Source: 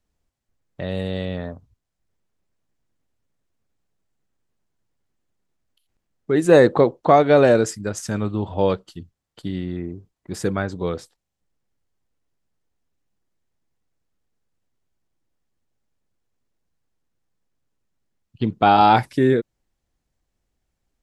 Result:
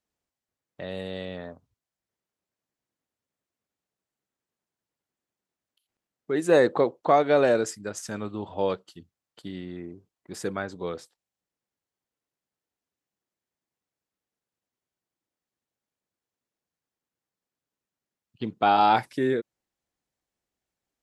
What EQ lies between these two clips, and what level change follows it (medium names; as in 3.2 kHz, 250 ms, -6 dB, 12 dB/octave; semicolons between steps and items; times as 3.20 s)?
high-pass 300 Hz 6 dB/octave; -5.0 dB